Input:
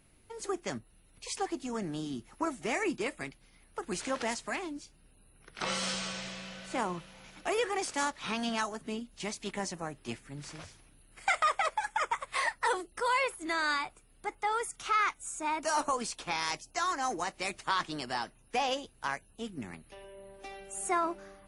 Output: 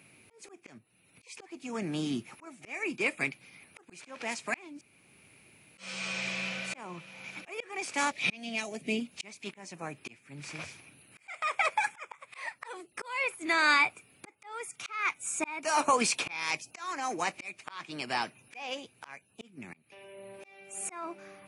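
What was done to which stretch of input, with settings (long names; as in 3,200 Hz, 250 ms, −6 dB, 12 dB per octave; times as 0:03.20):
0:04.81–0:05.78: fill with room tone
0:08.11–0:09.00: flat-topped bell 1,200 Hz −13 dB 1.1 octaves
0:15.05–0:17.00: clip gain +3.5 dB
whole clip: high-pass filter 110 Hz 24 dB per octave; parametric band 2,400 Hz +14 dB 0.27 octaves; volume swells 687 ms; level +5.5 dB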